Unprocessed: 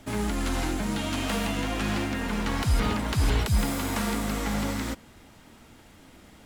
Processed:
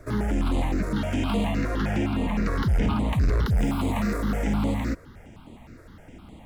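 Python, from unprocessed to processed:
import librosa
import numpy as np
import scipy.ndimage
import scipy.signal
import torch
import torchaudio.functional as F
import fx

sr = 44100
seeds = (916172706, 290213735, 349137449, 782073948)

y = fx.peak_eq(x, sr, hz=15000.0, db=-13.0, octaves=2.7)
y = 10.0 ** (-25.5 / 20.0) * np.tanh(y / 10.0 ** (-25.5 / 20.0))
y = fx.phaser_held(y, sr, hz=9.7, low_hz=830.0, high_hz=5500.0)
y = y * 10.0 ** (8.5 / 20.0)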